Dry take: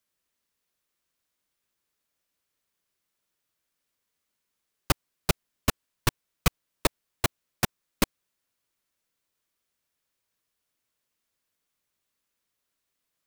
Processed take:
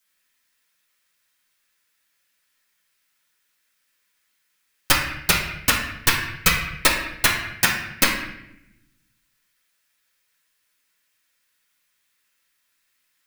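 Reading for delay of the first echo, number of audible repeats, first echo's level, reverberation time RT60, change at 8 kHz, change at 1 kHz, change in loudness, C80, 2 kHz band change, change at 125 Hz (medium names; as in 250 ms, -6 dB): no echo, no echo, no echo, 0.85 s, +10.5 dB, +8.0 dB, +10.0 dB, 6.0 dB, +14.5 dB, +1.0 dB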